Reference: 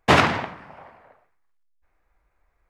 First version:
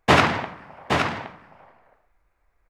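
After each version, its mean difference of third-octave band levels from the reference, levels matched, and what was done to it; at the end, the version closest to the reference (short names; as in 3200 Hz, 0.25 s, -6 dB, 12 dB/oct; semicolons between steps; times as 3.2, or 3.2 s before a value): 7.0 dB: echo 0.818 s -6 dB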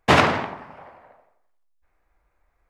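1.0 dB: band-limited delay 88 ms, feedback 39%, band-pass 530 Hz, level -5 dB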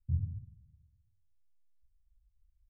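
19.0 dB: inverse Chebyshev low-pass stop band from 590 Hz, stop band 80 dB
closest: second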